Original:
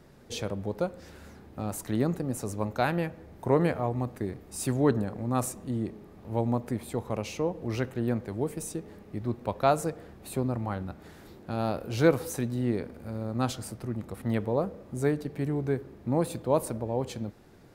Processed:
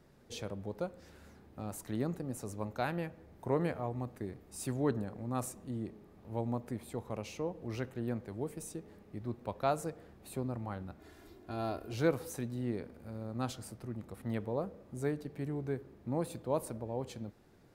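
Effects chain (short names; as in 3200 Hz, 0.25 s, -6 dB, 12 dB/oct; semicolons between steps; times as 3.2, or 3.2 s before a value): 10.99–11.93 comb 2.9 ms; gain -8 dB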